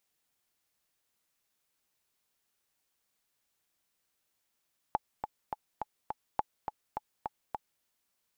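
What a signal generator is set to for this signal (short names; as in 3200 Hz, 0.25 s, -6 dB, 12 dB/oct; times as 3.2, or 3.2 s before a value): metronome 208 bpm, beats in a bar 5, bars 2, 853 Hz, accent 7 dB -14.5 dBFS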